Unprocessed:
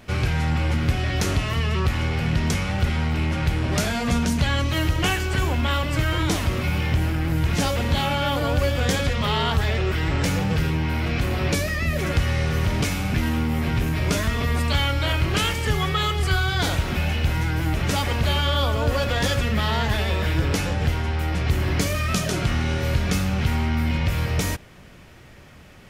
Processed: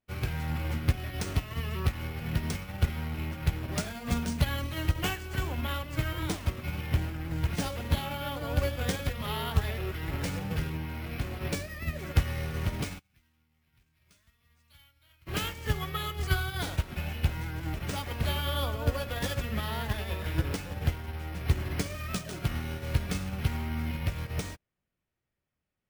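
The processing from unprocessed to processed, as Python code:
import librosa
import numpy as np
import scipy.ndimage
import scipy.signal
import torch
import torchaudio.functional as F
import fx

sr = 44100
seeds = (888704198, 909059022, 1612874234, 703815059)

y = np.repeat(x[::3], 3)[:len(x)]
y = fx.tone_stack(y, sr, knobs='5-5-5', at=(12.99, 15.27))
y = fx.upward_expand(y, sr, threshold_db=-41.0, expansion=2.5)
y = y * 10.0 ** (-1.5 / 20.0)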